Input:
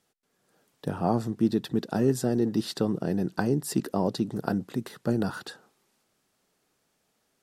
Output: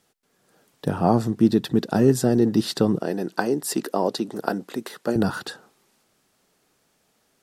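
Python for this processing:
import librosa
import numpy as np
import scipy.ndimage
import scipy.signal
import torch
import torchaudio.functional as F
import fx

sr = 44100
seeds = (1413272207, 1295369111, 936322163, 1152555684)

y = fx.highpass(x, sr, hz=330.0, slope=12, at=(2.99, 5.16))
y = y * 10.0 ** (6.5 / 20.0)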